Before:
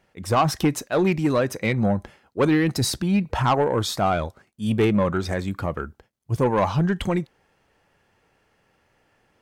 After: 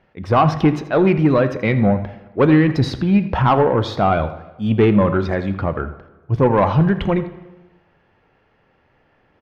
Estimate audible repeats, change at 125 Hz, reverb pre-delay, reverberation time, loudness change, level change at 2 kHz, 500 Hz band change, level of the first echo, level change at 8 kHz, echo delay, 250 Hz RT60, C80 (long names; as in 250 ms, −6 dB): 1, +6.5 dB, 5 ms, 1.1 s, +5.5 dB, +4.0 dB, +6.0 dB, −16.0 dB, below −10 dB, 82 ms, 1.1 s, 13.0 dB